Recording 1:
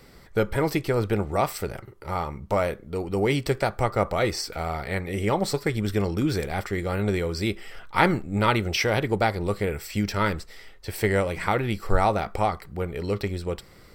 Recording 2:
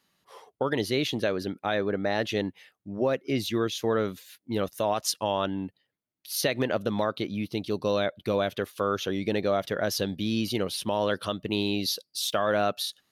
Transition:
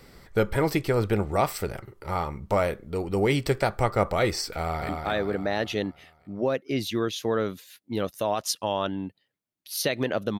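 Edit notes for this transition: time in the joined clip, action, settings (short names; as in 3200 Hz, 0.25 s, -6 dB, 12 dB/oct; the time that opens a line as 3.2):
recording 1
4.58–4.89 echo throw 0.23 s, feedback 55%, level -4 dB
4.89 switch to recording 2 from 1.48 s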